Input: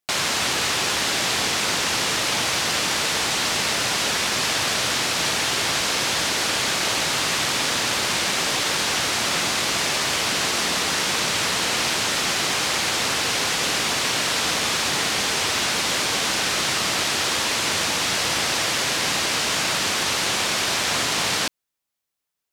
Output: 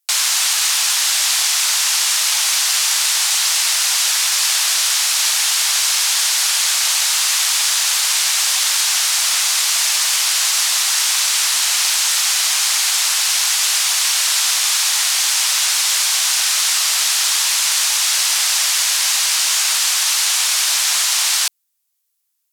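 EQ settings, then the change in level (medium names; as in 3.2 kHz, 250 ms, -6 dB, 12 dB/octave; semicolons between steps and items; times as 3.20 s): high-pass 790 Hz 24 dB/octave; treble shelf 4.3 kHz +5.5 dB; peaking EQ 15 kHz +11.5 dB 2.1 oct; -2.5 dB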